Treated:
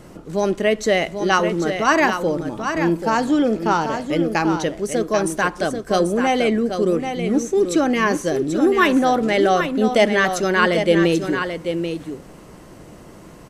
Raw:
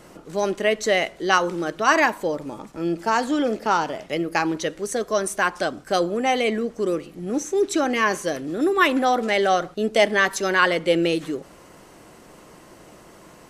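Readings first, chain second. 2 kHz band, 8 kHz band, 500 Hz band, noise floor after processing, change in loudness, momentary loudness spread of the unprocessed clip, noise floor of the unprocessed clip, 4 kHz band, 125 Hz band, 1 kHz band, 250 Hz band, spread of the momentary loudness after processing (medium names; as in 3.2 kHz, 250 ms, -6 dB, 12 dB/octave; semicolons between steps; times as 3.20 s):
+1.0 dB, +0.5 dB, +3.5 dB, -42 dBFS, +3.0 dB, 9 LU, -48 dBFS, +1.0 dB, +8.5 dB, +2.0 dB, +6.0 dB, 7 LU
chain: bass shelf 300 Hz +10.5 dB; on a send: delay 787 ms -7.5 dB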